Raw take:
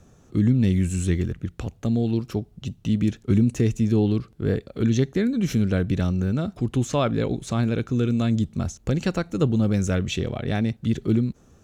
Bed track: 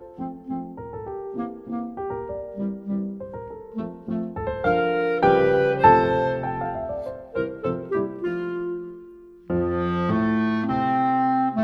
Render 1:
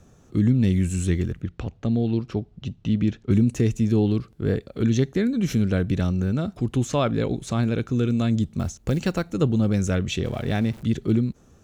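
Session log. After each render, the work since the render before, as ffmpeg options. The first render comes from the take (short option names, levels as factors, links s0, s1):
-filter_complex "[0:a]asettb=1/sr,asplit=3[s0][s1][s2];[s0]atrim=end=1.424[s3];[s1]atrim=start=1.42:end=3.31,asetpts=PTS-STARTPTS,afade=t=in:d=0.004:c=qsin,afade=t=out:st=1.886:d=0.004:c=qsin,lowpass=4500[s4];[s2]atrim=start=3.306[s5];[s3][s4]acrossfade=d=0.004:c1=hsin:c2=qsin[s6];[s6][s5]acrossfade=d=0.004:c1=qsin:c2=hsin,asettb=1/sr,asplit=3[s7][s8][s9];[s7]atrim=end=8.594[s10];[s8]atrim=start=8.59:end=9.33,asetpts=PTS-STARTPTS,afade=t=in:d=0.004:c=qsin,afade=t=out:st=0.736:d=0.004:c=qsin,acrusher=bits=8:mode=log:mix=0:aa=0.000001[s11];[s9]atrim=start=9.326[s12];[s10][s11]acrossfade=d=0.004:c1=hsin:c2=qsin[s13];[s13][s12]acrossfade=d=0.004:c1=qsin:c2=hsin,asettb=1/sr,asplit=3[s14][s15][s16];[s14]atrim=end=10.244[s17];[s15]atrim=start=10.24:end=10.83,asetpts=PTS-STARTPTS,afade=t=in:d=0.004:c=qsin,afade=t=out:st=0.586:d=0.004:c=qsin,aeval=exprs='val(0)+0.5*0.0106*sgn(val(0))':c=same[s18];[s16]atrim=start=10.826[s19];[s17][s18]acrossfade=d=0.004:c1=hsin:c2=qsin[s20];[s20][s19]acrossfade=d=0.004:c1=qsin:c2=hsin"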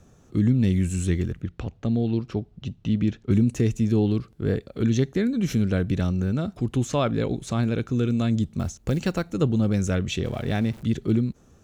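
-af "volume=0.891"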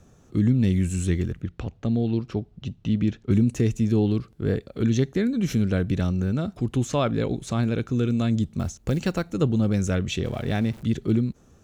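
-af anull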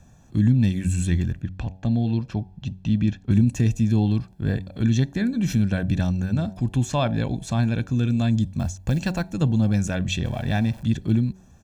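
-af "aecho=1:1:1.2:0.64,bandreject=f=93.81:t=h:w=4,bandreject=f=187.62:t=h:w=4,bandreject=f=281.43:t=h:w=4,bandreject=f=375.24:t=h:w=4,bandreject=f=469.05:t=h:w=4,bandreject=f=562.86:t=h:w=4,bandreject=f=656.67:t=h:w=4,bandreject=f=750.48:t=h:w=4,bandreject=f=844.29:t=h:w=4,bandreject=f=938.1:t=h:w=4"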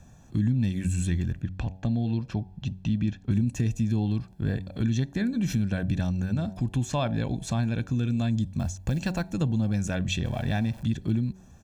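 -af "acompressor=threshold=0.0501:ratio=2"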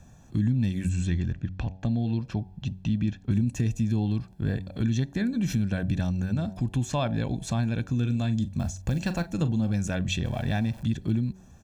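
-filter_complex "[0:a]asettb=1/sr,asplit=3[s0][s1][s2];[s0]atrim=end=0.894[s3];[s1]atrim=start=0.89:end=1.81,asetpts=PTS-STARTPTS,afade=t=in:d=0.004:c=qsin,afade=t=out:st=0.916:d=0.004:c=qsin,lowpass=f=6800:w=0.5412,lowpass=f=6800:w=1.3066[s4];[s2]atrim=start=1.806[s5];[s3][s4]acrossfade=d=0.004:c1=hsin:c2=qsin[s6];[s6][s5]acrossfade=d=0.004:c1=qsin:c2=hsin,asettb=1/sr,asplit=3[s7][s8][s9];[s7]atrim=end=7.954[s10];[s8]atrim=start=7.95:end=9.73,asetpts=PTS-STARTPTS,afade=t=in:d=0.004:c=qsin,afade=t=out:st=1.776:d=0.004:c=qsin,asplit=2[s11][s12];[s12]adelay=41,volume=0.224[s13];[s11][s13]amix=inputs=2:normalize=0,atrim=end_sample=78498[s14];[s9]atrim=start=9.726[s15];[s10][s14]acrossfade=d=0.004:c1=hsin:c2=qsin[s16];[s16][s15]acrossfade=d=0.004:c1=qsin:c2=hsin"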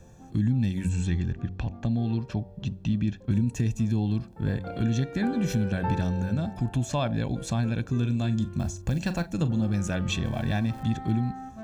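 -filter_complex "[1:a]volume=0.119[s0];[0:a][s0]amix=inputs=2:normalize=0"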